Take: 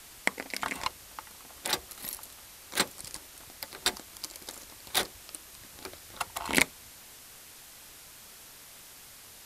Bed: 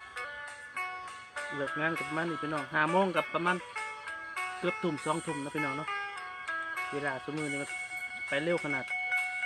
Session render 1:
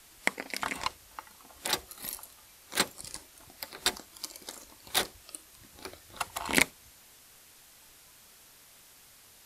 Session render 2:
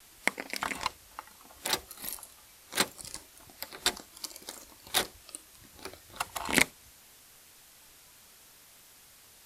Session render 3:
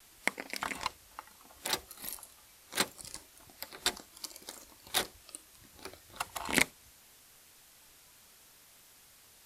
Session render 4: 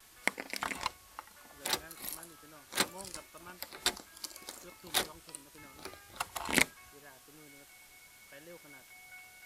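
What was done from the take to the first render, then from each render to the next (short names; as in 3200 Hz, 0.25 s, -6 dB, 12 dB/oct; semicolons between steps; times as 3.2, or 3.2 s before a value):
noise print and reduce 6 dB
short-mantissa float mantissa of 4-bit; vibrato 0.71 Hz 23 cents
gain -3 dB
add bed -22 dB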